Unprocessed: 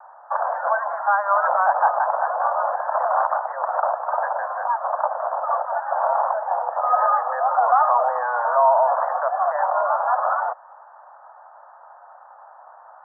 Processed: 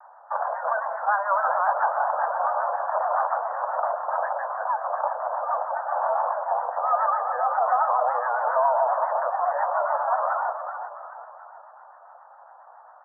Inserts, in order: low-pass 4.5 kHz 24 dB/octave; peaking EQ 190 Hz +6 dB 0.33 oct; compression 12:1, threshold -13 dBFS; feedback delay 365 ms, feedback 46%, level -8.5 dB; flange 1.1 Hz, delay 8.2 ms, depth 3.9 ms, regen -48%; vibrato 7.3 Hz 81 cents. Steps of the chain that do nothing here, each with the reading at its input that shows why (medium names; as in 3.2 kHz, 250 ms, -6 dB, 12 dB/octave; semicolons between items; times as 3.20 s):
low-pass 4.5 kHz: input has nothing above 1.8 kHz; peaking EQ 190 Hz: input has nothing below 450 Hz